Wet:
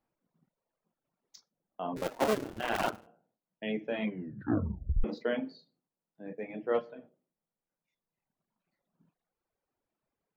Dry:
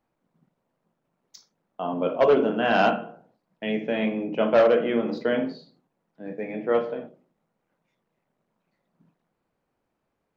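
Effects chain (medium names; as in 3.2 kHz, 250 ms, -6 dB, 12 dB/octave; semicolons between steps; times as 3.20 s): 1.96–3.07 s: cycle switcher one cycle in 2, muted; 4.04 s: tape stop 1.00 s; reverb removal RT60 1.7 s; trim -6.5 dB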